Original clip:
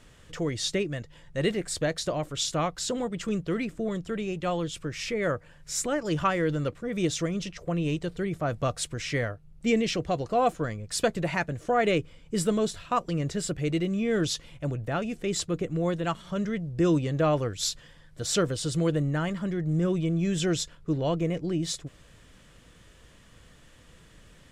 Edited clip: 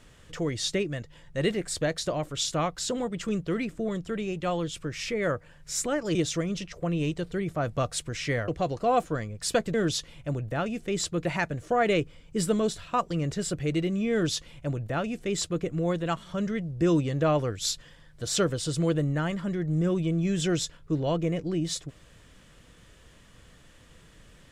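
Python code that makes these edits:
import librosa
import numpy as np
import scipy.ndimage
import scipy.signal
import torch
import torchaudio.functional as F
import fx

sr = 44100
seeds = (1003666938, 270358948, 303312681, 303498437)

y = fx.edit(x, sr, fx.cut(start_s=6.15, length_s=0.85),
    fx.cut(start_s=9.33, length_s=0.64),
    fx.duplicate(start_s=14.1, length_s=1.51, to_s=11.23), tone=tone)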